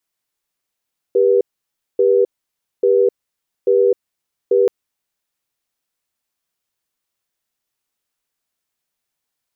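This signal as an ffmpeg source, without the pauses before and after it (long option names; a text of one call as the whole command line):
ffmpeg -f lavfi -i "aevalsrc='0.224*(sin(2*PI*395*t)+sin(2*PI*485*t))*clip(min(mod(t,0.84),0.26-mod(t,0.84))/0.005,0,1)':duration=3.53:sample_rate=44100" out.wav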